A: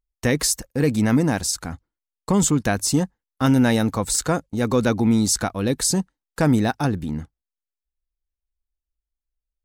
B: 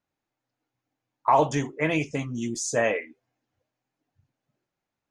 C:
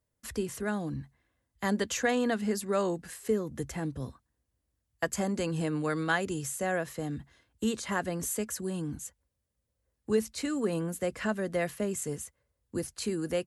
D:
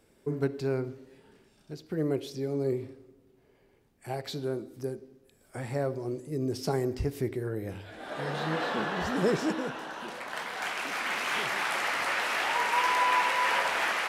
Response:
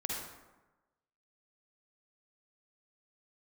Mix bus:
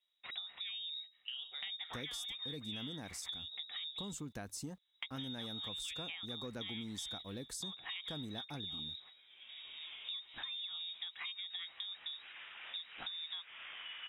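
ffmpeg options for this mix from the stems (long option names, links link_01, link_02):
-filter_complex "[0:a]acrusher=bits=8:mix=0:aa=0.000001,adelay=1700,volume=-18.5dB[link_01];[1:a]acrusher=bits=8:mix=0:aa=0.000001,volume=-16.5dB,asplit=2[link_02][link_03];[2:a]volume=0dB[link_04];[3:a]highshelf=frequency=2100:gain=-5.5,adelay=1300,volume=-18dB[link_05];[link_03]apad=whole_len=678592[link_06];[link_05][link_06]sidechaincompress=threshold=-50dB:ratio=8:attack=16:release=285[link_07];[link_02][link_04][link_07]amix=inputs=3:normalize=0,lowpass=frequency=3300:width_type=q:width=0.5098,lowpass=frequency=3300:width_type=q:width=0.6013,lowpass=frequency=3300:width_type=q:width=0.9,lowpass=frequency=3300:width_type=q:width=2.563,afreqshift=-3900,acompressor=threshold=-35dB:ratio=4,volume=0dB[link_08];[link_01][link_08]amix=inputs=2:normalize=0,acompressor=threshold=-42dB:ratio=4"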